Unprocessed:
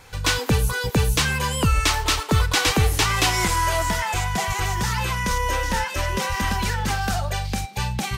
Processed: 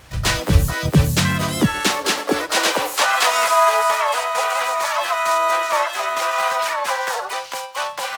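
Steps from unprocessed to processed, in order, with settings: high-pass sweep 64 Hz -> 950 Hz, 0.42–3.14 s; harmony voices -7 st -1 dB, +4 st 0 dB, +7 st -13 dB; trim -3 dB

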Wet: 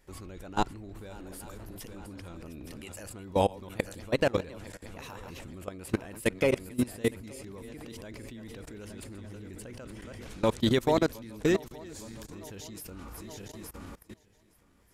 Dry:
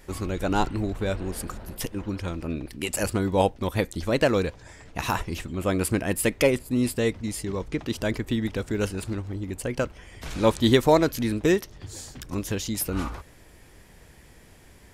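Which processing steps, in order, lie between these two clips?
backward echo that repeats 433 ms, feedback 63%, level -10.5 dB; 0.95–1.58 s: treble shelf 11 kHz +11.5 dB; level held to a coarse grid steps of 21 dB; trim -1.5 dB

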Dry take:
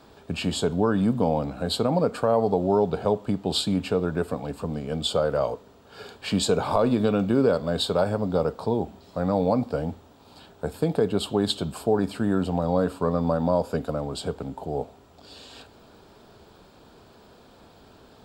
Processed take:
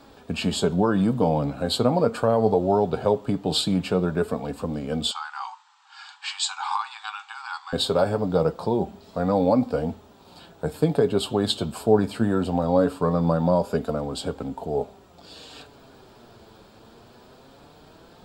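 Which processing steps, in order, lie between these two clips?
flange 0.21 Hz, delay 3.5 ms, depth 5.9 ms, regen +53%; 5.11–7.73 s: brick-wall FIR band-pass 760–8500 Hz; trim +6 dB

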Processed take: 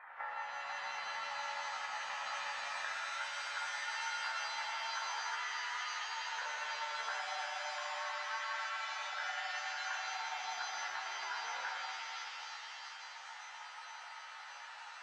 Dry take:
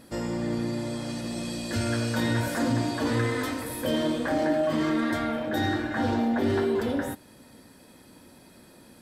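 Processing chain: elliptic band-pass 840–2200 Hz, stop band 50 dB; compression 12:1, threshold -50 dBFS, peak gain reduction 19.5 dB; granular stretch 1.6×, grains 79 ms; vibrato 6 Hz 15 cents; pre-echo 98 ms -14 dB; speed mistake 25 fps video run at 24 fps; pitch-shifted reverb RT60 3.2 s, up +7 st, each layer -2 dB, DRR 1 dB; trim +9.5 dB

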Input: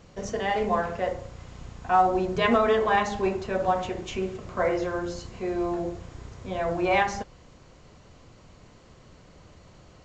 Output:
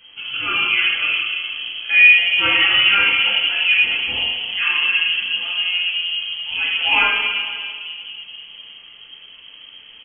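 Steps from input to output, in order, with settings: delay 516 ms -24 dB; reverberation RT60 2.5 s, pre-delay 3 ms, DRR -7.5 dB; frequency inversion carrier 3.2 kHz; trim -1 dB

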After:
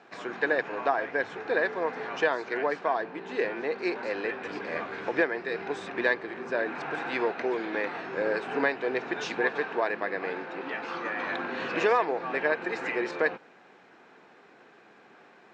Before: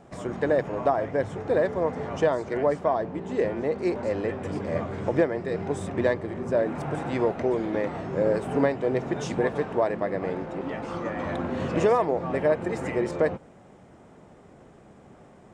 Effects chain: cabinet simulation 400–5900 Hz, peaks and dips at 590 Hz -8 dB, 1.6 kHz +9 dB, 2.5 kHz +8 dB, 4.1 kHz +7 dB

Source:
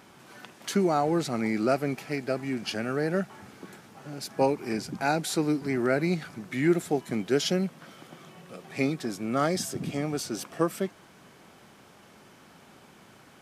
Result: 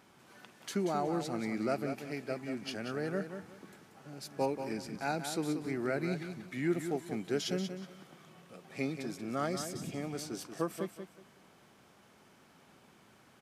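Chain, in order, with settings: feedback delay 184 ms, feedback 24%, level -8.5 dB; trim -8.5 dB

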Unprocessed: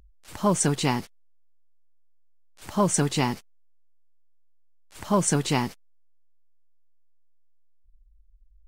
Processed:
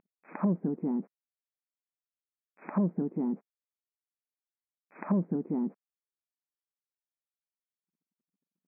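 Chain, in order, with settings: waveshaping leveller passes 2; low-pass that closes with the level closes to 300 Hz, closed at -17.5 dBFS; brick-wall FIR band-pass 170–2600 Hz; distance through air 390 m; trim -4 dB

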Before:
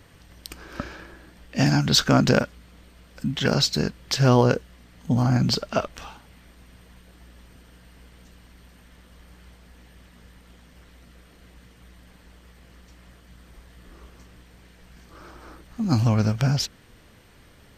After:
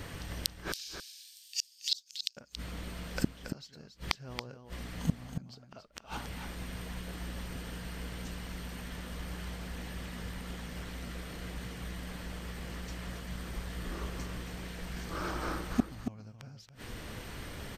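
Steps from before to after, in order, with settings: 0.72–2.37 s: inverse Chebyshev high-pass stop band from 1.2 kHz, stop band 60 dB; inverted gate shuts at -23 dBFS, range -38 dB; delay 278 ms -8.5 dB; trim +9 dB

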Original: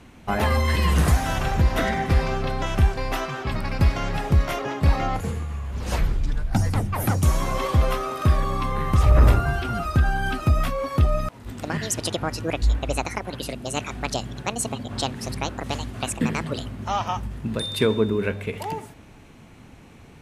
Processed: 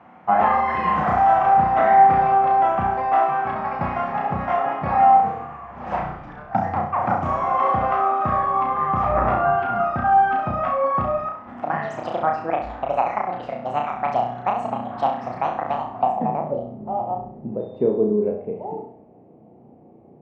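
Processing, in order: cabinet simulation 210–8600 Hz, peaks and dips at 290 Hz -6 dB, 420 Hz -8 dB, 750 Hz +10 dB, 1.5 kHz -8 dB, 4 kHz -5 dB; flutter echo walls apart 5.7 m, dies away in 0.53 s; low-pass sweep 1.4 kHz -> 440 Hz, 15.70–16.76 s

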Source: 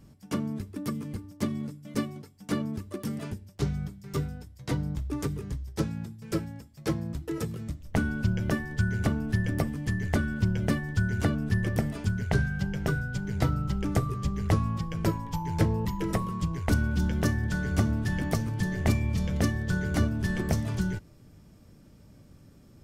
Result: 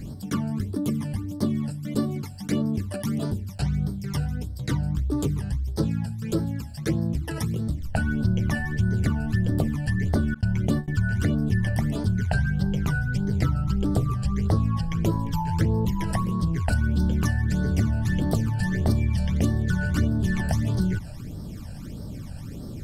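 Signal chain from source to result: 10.34–10.88 s: gate -28 dBFS, range -30 dB; phase shifter stages 12, 1.6 Hz, lowest notch 350–2500 Hz; level flattener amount 50%

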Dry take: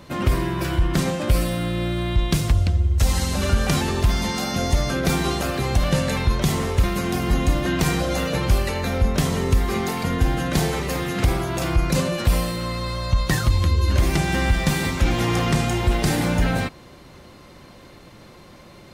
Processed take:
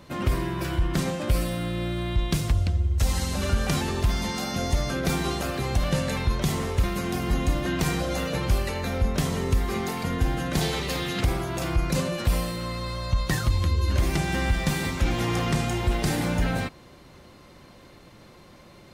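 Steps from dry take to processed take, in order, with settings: 10.61–11.21 s: peaking EQ 3.7 kHz +9 dB 1 oct; trim -4.5 dB

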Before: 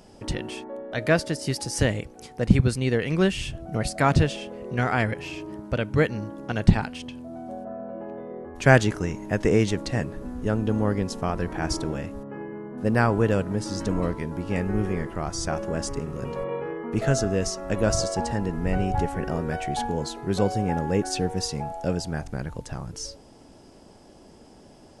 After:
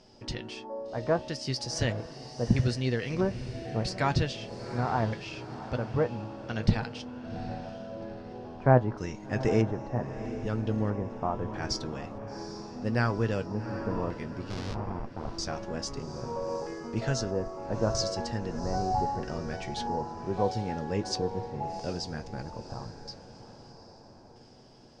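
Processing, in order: 14.50–15.31 s: Schmitt trigger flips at -24.5 dBFS; LFO low-pass square 0.78 Hz 950–5100 Hz; flange 0.69 Hz, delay 7.9 ms, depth 1.2 ms, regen +57%; echo that smears into a reverb 777 ms, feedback 46%, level -12 dB; trim -3 dB

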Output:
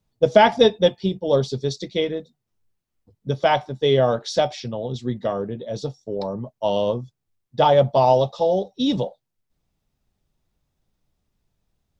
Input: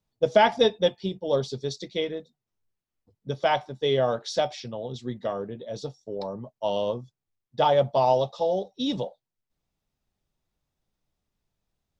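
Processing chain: bass shelf 320 Hz +5 dB; trim +4 dB

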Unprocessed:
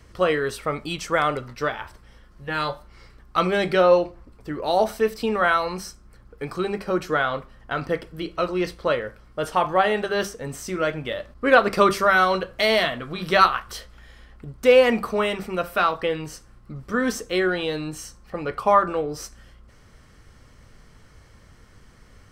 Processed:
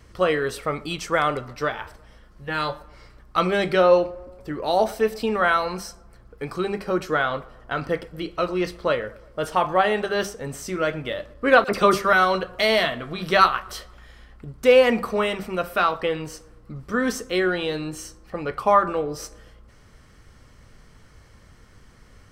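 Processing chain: vibrato 1.3 Hz 5.1 cents; 11.64–12.13 s: phase dispersion lows, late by 43 ms, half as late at 2.1 kHz; tape echo 118 ms, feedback 60%, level -21 dB, low-pass 1.7 kHz

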